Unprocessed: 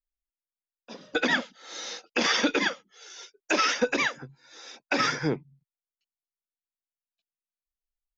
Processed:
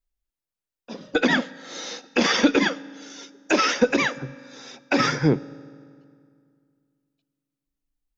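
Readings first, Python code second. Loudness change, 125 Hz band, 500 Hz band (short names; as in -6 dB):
+4.5 dB, +10.0 dB, +6.0 dB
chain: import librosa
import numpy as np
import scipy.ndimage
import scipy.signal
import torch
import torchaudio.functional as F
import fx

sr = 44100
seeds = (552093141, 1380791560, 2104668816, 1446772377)

y = fx.low_shelf(x, sr, hz=440.0, db=9.0)
y = fx.rev_fdn(y, sr, rt60_s=2.2, lf_ratio=1.2, hf_ratio=0.75, size_ms=11.0, drr_db=18.5)
y = y * 10.0 ** (2.0 / 20.0)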